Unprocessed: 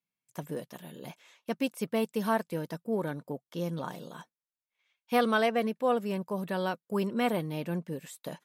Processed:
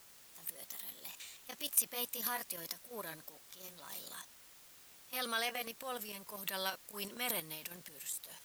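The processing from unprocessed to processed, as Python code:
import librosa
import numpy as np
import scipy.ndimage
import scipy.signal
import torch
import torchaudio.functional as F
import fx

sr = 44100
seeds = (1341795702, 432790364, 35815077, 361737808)

y = fx.pitch_glide(x, sr, semitones=2.0, runs='ending unshifted')
y = scipy.signal.sosfilt(scipy.signal.butter(2, 93.0, 'highpass', fs=sr, output='sos'), y)
y = fx.level_steps(y, sr, step_db=16)
y = fx.transient(y, sr, attack_db=-7, sustain_db=9)
y = F.preemphasis(torch.from_numpy(y), 0.97).numpy()
y = fx.quant_dither(y, sr, seeds[0], bits=12, dither='triangular')
y = y * librosa.db_to_amplitude(13.0)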